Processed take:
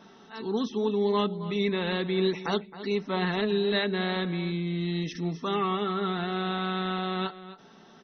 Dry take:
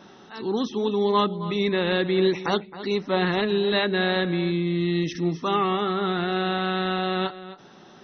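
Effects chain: comb 4.5 ms, depth 42%; trim -5 dB

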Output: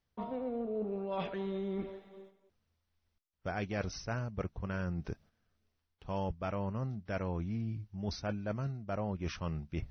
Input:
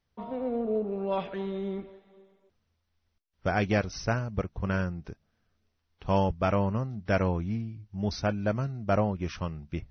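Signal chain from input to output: gate -59 dBFS, range -8 dB; reverse; compression 6:1, threshold -38 dBFS, peak gain reduction 16.5 dB; reverse; trim +4 dB

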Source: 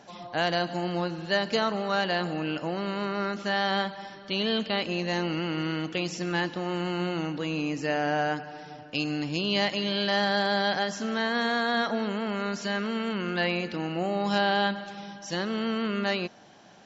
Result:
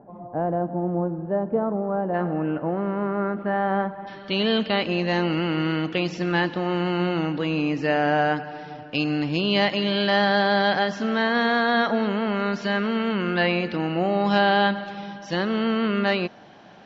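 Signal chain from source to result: Bessel low-pass 630 Hz, order 4, from 2.13 s 1.1 kHz, from 4.06 s 3.3 kHz; trim +6 dB

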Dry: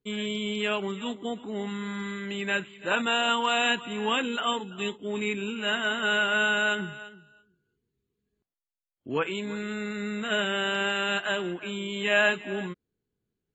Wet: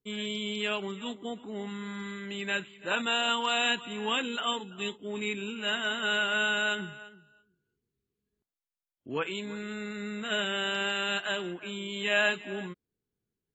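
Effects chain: dynamic bell 4.8 kHz, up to +7 dB, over -45 dBFS, Q 1; trim -4.5 dB

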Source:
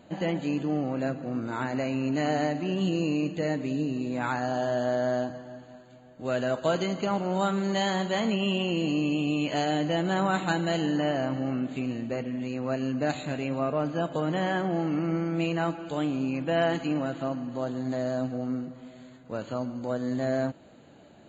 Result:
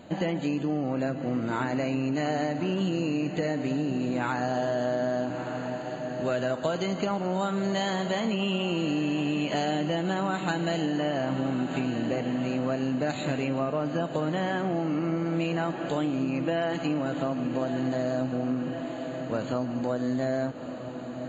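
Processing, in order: on a send: echo that smears into a reverb 1243 ms, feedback 58%, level -13 dB; on the sum: compression, threshold -30 dBFS, peak gain reduction 10 dB; trim +5.5 dB

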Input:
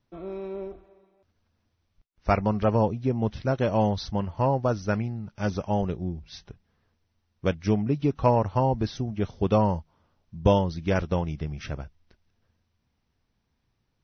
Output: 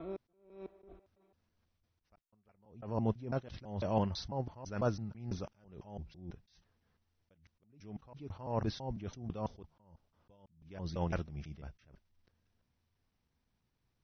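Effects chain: slices played last to first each 166 ms, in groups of 2; attacks held to a fixed rise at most 100 dB/s; trim -5.5 dB

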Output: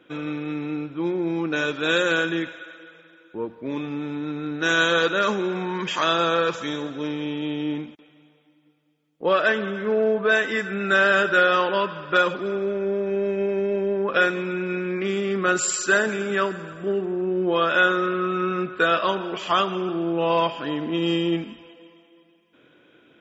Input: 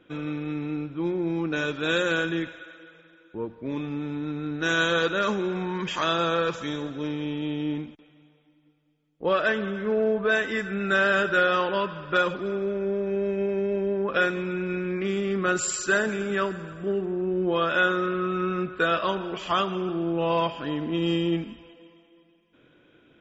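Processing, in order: high-pass 230 Hz 6 dB/octave; trim +4 dB

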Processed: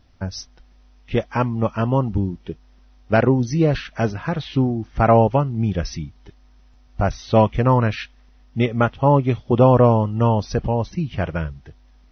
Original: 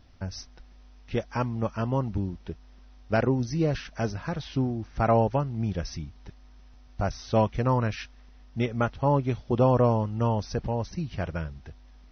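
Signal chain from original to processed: spectral noise reduction 8 dB; trim +8 dB

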